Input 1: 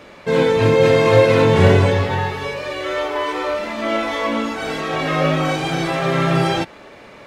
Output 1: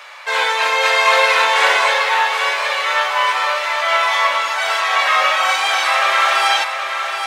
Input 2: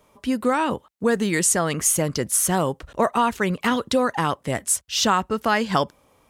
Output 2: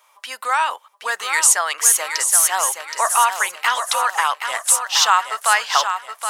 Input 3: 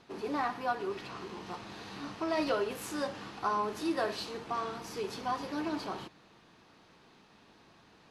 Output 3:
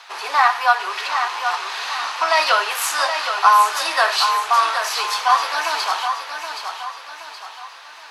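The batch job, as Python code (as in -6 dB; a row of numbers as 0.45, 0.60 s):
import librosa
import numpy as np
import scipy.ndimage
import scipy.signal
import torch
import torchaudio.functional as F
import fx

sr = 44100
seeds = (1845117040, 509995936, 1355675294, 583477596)

y = scipy.signal.sosfilt(scipy.signal.butter(4, 850.0, 'highpass', fs=sr, output='sos'), x)
y = fx.echo_feedback(y, sr, ms=772, feedback_pct=42, wet_db=-7.5)
y = librosa.util.normalize(y) * 10.0 ** (-1.5 / 20.0)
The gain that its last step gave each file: +8.5, +6.5, +20.5 dB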